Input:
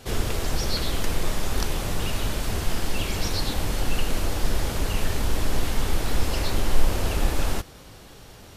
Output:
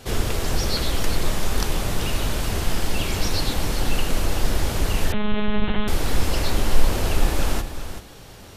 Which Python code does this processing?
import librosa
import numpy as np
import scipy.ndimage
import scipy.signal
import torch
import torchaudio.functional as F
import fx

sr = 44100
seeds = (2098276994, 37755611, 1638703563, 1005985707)

y = x + 10.0 ** (-10.5 / 20.0) * np.pad(x, (int(386 * sr / 1000.0), 0))[:len(x)]
y = fx.lpc_monotone(y, sr, seeds[0], pitch_hz=210.0, order=8, at=(5.12, 5.88))
y = y * librosa.db_to_amplitude(2.5)